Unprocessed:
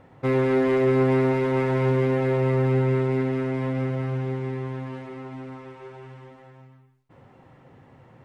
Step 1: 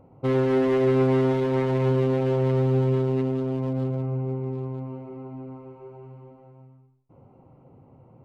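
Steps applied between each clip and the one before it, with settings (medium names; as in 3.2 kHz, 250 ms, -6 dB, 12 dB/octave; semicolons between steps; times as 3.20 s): local Wiener filter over 25 samples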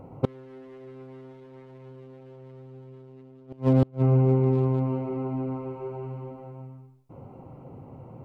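inverted gate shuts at -19 dBFS, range -32 dB; trim +8 dB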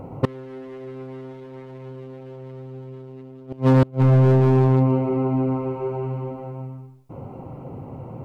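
hard clipper -20 dBFS, distortion -10 dB; trim +8.5 dB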